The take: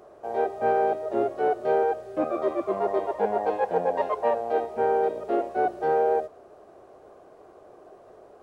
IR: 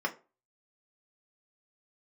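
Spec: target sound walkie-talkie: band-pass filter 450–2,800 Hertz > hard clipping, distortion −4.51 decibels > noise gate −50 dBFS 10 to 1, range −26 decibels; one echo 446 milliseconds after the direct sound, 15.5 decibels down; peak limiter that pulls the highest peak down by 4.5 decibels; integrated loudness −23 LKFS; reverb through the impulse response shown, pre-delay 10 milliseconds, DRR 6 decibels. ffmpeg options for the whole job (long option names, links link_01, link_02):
-filter_complex "[0:a]alimiter=limit=-17dB:level=0:latency=1,aecho=1:1:446:0.168,asplit=2[link_01][link_02];[1:a]atrim=start_sample=2205,adelay=10[link_03];[link_02][link_03]afir=irnorm=-1:irlink=0,volume=-13dB[link_04];[link_01][link_04]amix=inputs=2:normalize=0,highpass=450,lowpass=2800,asoftclip=type=hard:threshold=-33.5dB,agate=range=-26dB:threshold=-50dB:ratio=10,volume=13dB"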